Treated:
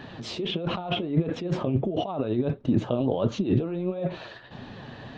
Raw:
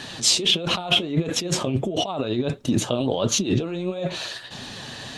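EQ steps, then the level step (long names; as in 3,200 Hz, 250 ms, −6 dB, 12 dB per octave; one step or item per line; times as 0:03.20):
head-to-tape spacing loss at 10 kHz 42 dB
0.0 dB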